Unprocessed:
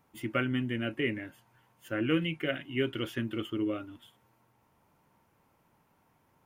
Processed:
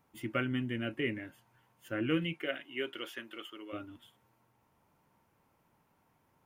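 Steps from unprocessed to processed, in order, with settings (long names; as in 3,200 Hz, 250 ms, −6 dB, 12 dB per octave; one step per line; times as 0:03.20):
0:02.32–0:03.72: high-pass filter 300 Hz → 800 Hz 12 dB per octave
level −3 dB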